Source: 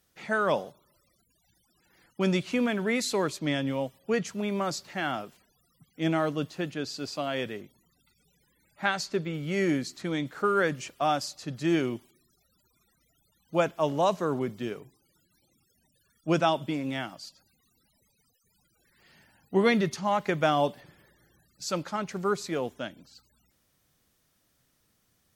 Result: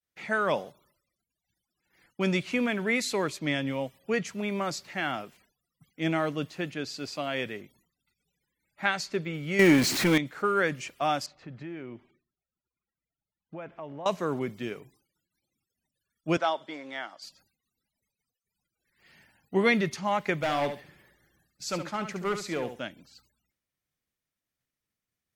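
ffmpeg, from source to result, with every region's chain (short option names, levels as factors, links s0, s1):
-filter_complex "[0:a]asettb=1/sr,asplit=3[s0][s1][s2];[s0]atrim=end=9.594[s3];[s1]atrim=start=9.59:end=10.18,asetpts=PTS-STARTPTS,afade=t=in:d=0.004:c=qsin,afade=t=out:st=0.586:d=0.004:c=qsin,aeval=exprs='val(0)+0.5*0.0299*sgn(val(0))':c=same,acontrast=65[s4];[s2]atrim=start=10.176[s5];[s3][s4]acrossfade=d=0.004:c1=hsin:c2=qsin[s6];[s6][s5]acrossfade=d=0.004:c1=qsin:c2=hsin,asettb=1/sr,asplit=3[s7][s8][s9];[s7]atrim=end=11.264[s10];[s8]atrim=start=11.26:end=14.06,asetpts=PTS-STARTPTS,afade=t=in:d=0.004:c=qsin,afade=t=out:st=2.796:d=0.004:c=qsin,lowpass=2000,acompressor=threshold=0.0141:ratio=4:attack=3.2:release=140:knee=1:detection=peak[s11];[s9]atrim=start=14.056[s12];[s10][s11]acrossfade=d=0.004:c1=hsin:c2=qsin[s13];[s13][s12]acrossfade=d=0.004:c1=qsin:c2=hsin,asettb=1/sr,asplit=3[s14][s15][s16];[s14]atrim=end=16.374[s17];[s15]atrim=start=16.37:end=17.22,asetpts=PTS-STARTPTS,afade=t=in:d=0.004:c=qsin,afade=t=out:st=0.846:d=0.004:c=qsin,equalizer=f=2600:t=o:w=0.28:g=-15,asoftclip=type=hard:threshold=0.158,highpass=510,lowpass=5200[s18];[s16]atrim=start=17.216[s19];[s17][s18]acrossfade=d=0.004:c1=hsin:c2=qsin[s20];[s20][s19]acrossfade=d=0.004:c1=qsin:c2=hsin,asettb=1/sr,asplit=3[s21][s22][s23];[s21]atrim=end=20.344[s24];[s22]atrim=start=20.34:end=22.81,asetpts=PTS-STARTPTS,afade=t=in:d=0.004:c=qsin,afade=t=out:st=2.466:d=0.004:c=qsin,volume=14.1,asoftclip=hard,volume=0.0708,aecho=1:1:70|140|210:0.355|0.0603|0.0103,atrim=end_sample=108927[s25];[s23]atrim=start=22.806[s26];[s24][s25]acrossfade=d=0.004:c1=hsin:c2=qsin[s27];[s27][s26]acrossfade=d=0.004:c1=qsin:c2=hsin,agate=range=0.0224:threshold=0.00112:ratio=3:detection=peak,equalizer=f=2200:w=2:g=6,volume=0.841"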